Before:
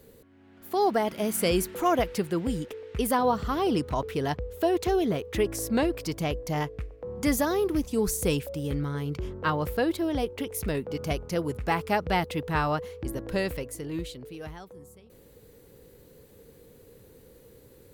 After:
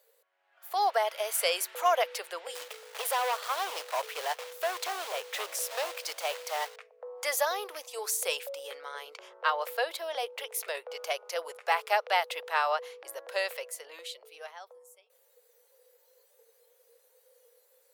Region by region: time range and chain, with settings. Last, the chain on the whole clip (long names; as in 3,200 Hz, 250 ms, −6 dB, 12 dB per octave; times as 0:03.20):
0:02.55–0:06.76: gain into a clipping stage and back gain 27.5 dB + log-companded quantiser 4 bits
whole clip: Butterworth high-pass 520 Hz 48 dB per octave; noise reduction from a noise print of the clip's start 9 dB; dynamic equaliser 3,400 Hz, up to +3 dB, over −49 dBFS, Q 1